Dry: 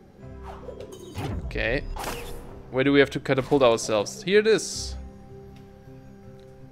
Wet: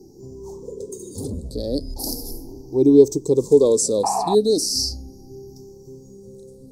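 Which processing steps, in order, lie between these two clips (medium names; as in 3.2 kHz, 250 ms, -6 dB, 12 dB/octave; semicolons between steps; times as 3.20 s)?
drifting ripple filter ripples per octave 0.73, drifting +0.37 Hz, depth 11 dB; FFT filter 190 Hz 0 dB, 260 Hz +9 dB, 430 Hz +7 dB, 690 Hz -9 dB, 6.4 kHz +12 dB; painted sound noise, 4.03–4.35 s, 650–2900 Hz -13 dBFS; elliptic band-stop 880–4700 Hz, stop band 40 dB; peaking EQ 2.2 kHz +4 dB 0.63 oct; trim -1 dB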